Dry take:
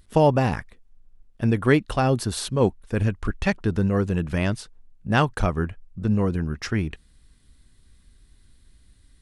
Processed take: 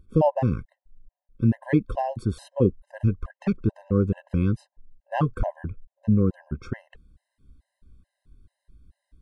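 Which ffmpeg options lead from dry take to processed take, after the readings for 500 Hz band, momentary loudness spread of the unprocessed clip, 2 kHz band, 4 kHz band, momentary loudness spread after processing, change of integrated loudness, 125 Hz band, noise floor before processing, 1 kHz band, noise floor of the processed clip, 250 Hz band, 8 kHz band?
-3.5 dB, 10 LU, -12.0 dB, under -15 dB, 12 LU, -2.0 dB, -1.5 dB, -57 dBFS, -4.5 dB, under -85 dBFS, -1.0 dB, under -15 dB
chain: -af "tiltshelf=f=1500:g=9.5,bandreject=f=450:w=12,afftfilt=real='re*gt(sin(2*PI*2.3*pts/sr)*(1-2*mod(floor(b*sr/1024/530),2)),0)':imag='im*gt(sin(2*PI*2.3*pts/sr)*(1-2*mod(floor(b*sr/1024/530),2)),0)':win_size=1024:overlap=0.75,volume=0.447"

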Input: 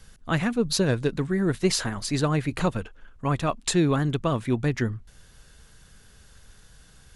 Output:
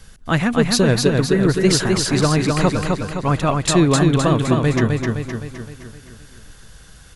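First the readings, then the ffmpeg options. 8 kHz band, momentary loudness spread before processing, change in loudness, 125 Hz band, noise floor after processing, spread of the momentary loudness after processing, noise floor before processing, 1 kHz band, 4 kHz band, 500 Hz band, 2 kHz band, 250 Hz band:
+8.5 dB, 6 LU, +8.0 dB, +8.5 dB, -44 dBFS, 9 LU, -54 dBFS, +8.5 dB, +8.5 dB, +8.5 dB, +8.5 dB, +8.5 dB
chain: -af "aecho=1:1:258|516|774|1032|1290|1548|1806:0.668|0.348|0.181|0.094|0.0489|0.0254|0.0132,volume=2.11"

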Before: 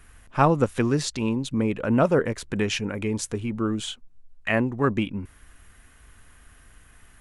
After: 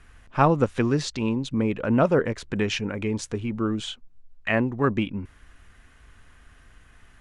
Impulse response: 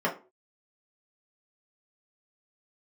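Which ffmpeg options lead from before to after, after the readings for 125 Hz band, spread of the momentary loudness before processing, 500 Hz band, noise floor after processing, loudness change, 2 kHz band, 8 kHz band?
0.0 dB, 13 LU, 0.0 dB, -54 dBFS, 0.0 dB, 0.0 dB, -4.5 dB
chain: -af "lowpass=6100"

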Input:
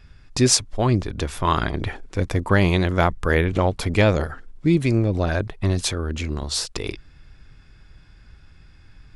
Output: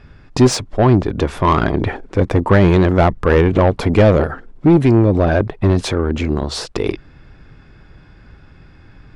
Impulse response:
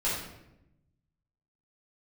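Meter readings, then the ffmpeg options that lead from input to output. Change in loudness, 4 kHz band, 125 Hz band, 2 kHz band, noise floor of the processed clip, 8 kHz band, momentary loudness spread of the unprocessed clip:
+6.5 dB, -1.0 dB, +6.5 dB, +2.5 dB, -45 dBFS, -5.0 dB, 11 LU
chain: -filter_complex "[0:a]tiltshelf=f=650:g=8,asplit=2[s0][s1];[s1]highpass=f=720:p=1,volume=12.6,asoftclip=type=tanh:threshold=1[s2];[s0][s2]amix=inputs=2:normalize=0,lowpass=f=2100:p=1,volume=0.501,volume=0.891"

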